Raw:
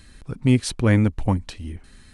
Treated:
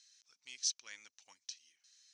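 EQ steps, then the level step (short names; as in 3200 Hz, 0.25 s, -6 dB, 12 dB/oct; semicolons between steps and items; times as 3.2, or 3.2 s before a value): band-pass 6000 Hz, Q 6.5; air absorption 180 m; differentiator; +16.0 dB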